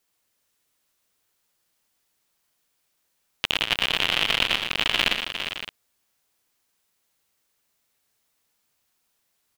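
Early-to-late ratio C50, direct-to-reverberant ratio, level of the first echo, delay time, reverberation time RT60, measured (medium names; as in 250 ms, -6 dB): no reverb, no reverb, -13.5 dB, 81 ms, no reverb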